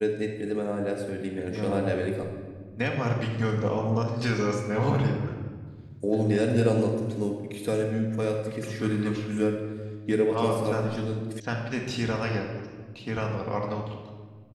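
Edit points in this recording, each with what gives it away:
11.4 sound cut off

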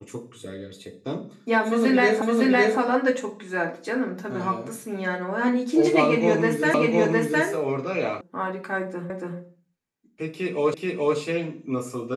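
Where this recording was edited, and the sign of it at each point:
2.22 repeat of the last 0.56 s
6.74 repeat of the last 0.71 s
8.21 sound cut off
9.1 repeat of the last 0.28 s
10.74 repeat of the last 0.43 s

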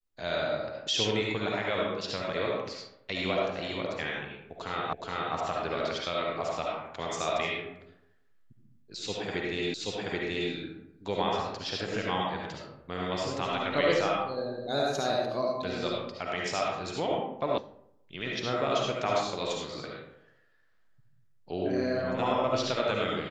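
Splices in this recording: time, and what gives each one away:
4.93 repeat of the last 0.42 s
9.74 repeat of the last 0.78 s
17.58 sound cut off

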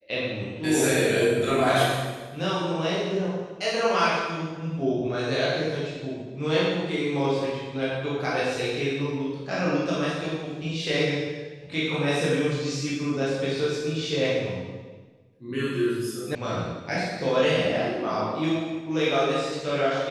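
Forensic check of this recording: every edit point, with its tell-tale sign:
16.35 sound cut off

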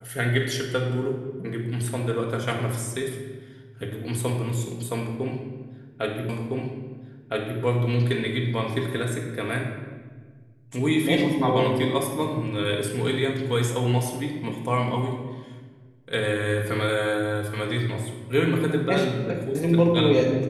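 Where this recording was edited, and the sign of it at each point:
6.29 repeat of the last 1.31 s

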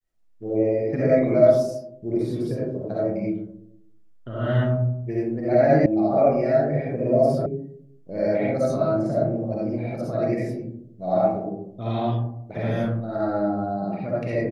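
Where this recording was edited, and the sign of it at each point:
5.86 sound cut off
7.46 sound cut off

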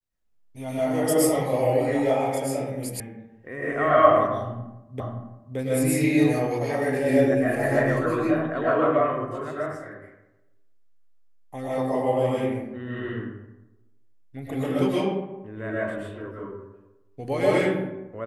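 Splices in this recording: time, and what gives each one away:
3 sound cut off
5 repeat of the last 0.57 s

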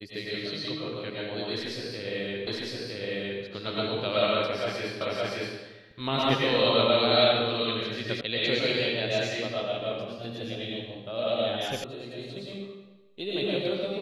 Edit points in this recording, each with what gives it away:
2.47 repeat of the last 0.96 s
5.01 repeat of the last 0.57 s
8.21 sound cut off
11.84 sound cut off

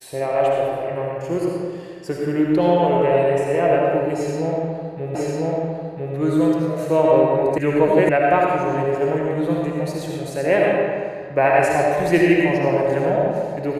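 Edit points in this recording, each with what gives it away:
5.15 repeat of the last 1 s
7.58 sound cut off
8.09 sound cut off

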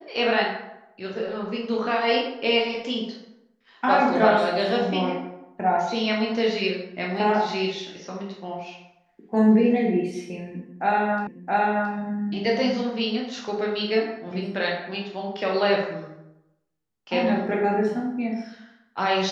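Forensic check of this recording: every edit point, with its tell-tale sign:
11.27 repeat of the last 0.67 s

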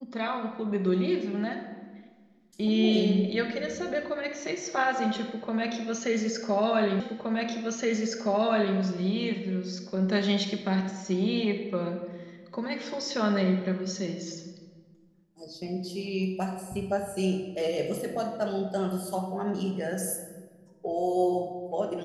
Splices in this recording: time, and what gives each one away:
7 repeat of the last 1.77 s

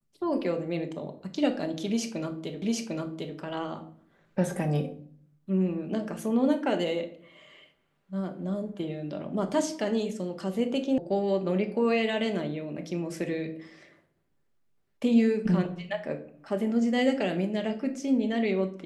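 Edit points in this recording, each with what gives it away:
2.62 repeat of the last 0.75 s
10.98 sound cut off

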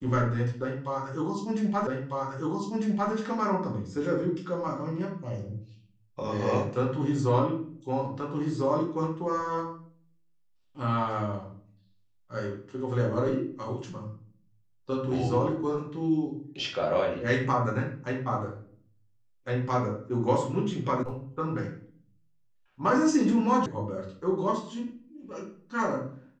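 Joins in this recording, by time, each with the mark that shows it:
1.87 repeat of the last 1.25 s
21.03 sound cut off
23.66 sound cut off

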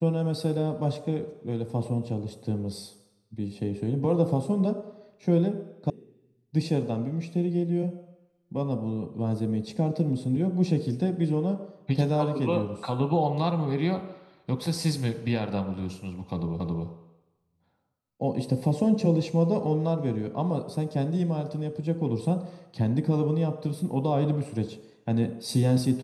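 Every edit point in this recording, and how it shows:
5.9 sound cut off
16.6 repeat of the last 0.27 s

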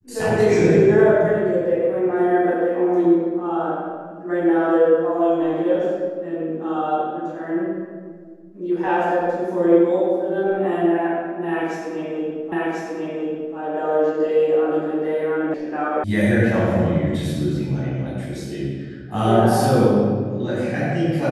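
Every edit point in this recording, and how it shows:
12.52 repeat of the last 1.04 s
15.54 sound cut off
16.04 sound cut off

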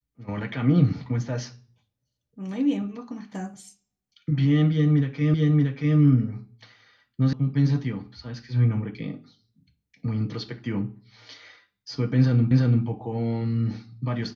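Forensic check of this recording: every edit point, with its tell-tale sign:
5.34 repeat of the last 0.63 s
7.33 sound cut off
12.51 repeat of the last 0.34 s

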